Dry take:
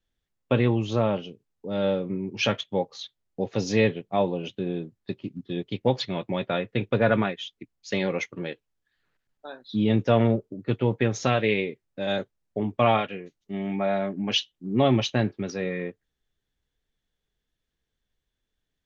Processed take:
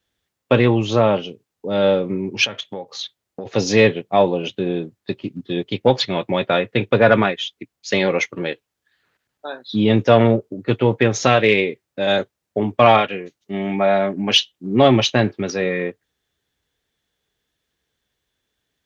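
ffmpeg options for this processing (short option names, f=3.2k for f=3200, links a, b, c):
-filter_complex "[0:a]asplit=3[a][b][c];[a]afade=t=out:st=2.44:d=0.02[d];[b]acompressor=threshold=-33dB:ratio=16:attack=3.2:release=140:knee=1:detection=peak,afade=t=in:st=2.44:d=0.02,afade=t=out:st=3.45:d=0.02[e];[c]afade=t=in:st=3.45:d=0.02[f];[d][e][f]amix=inputs=3:normalize=0,highpass=89,equalizer=f=170:w=0.83:g=-5,acontrast=69,volume=3.5dB"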